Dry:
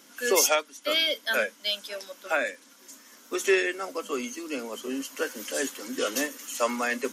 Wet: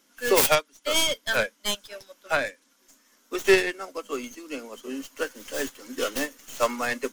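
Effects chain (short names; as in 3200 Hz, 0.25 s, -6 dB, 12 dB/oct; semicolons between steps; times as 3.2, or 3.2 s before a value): tracing distortion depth 0.29 ms; upward expander 1.5:1, over -46 dBFS; gain +4.5 dB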